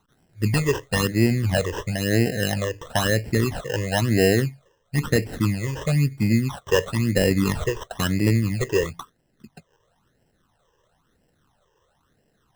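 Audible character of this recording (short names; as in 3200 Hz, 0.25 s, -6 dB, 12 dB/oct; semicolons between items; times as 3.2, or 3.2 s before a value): aliases and images of a low sample rate 2300 Hz, jitter 0%; phasing stages 12, 1 Hz, lowest notch 220–1200 Hz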